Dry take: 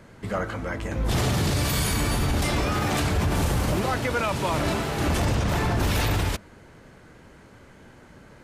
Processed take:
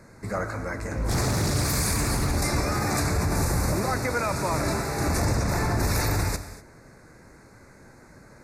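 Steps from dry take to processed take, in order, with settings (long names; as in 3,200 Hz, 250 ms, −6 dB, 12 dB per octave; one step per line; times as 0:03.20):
Butterworth band-reject 3,100 Hz, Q 1.7
parametric band 8,800 Hz +5 dB 2.5 octaves
reverb whose tail is shaped and stops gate 270 ms flat, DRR 10 dB
0:00.85–0:02.37: highs frequency-modulated by the lows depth 0.27 ms
level −1.5 dB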